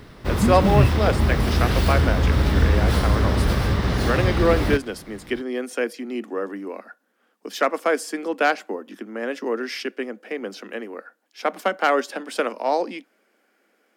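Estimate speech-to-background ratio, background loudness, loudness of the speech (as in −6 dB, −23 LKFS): −4.5 dB, −21.0 LKFS, −25.5 LKFS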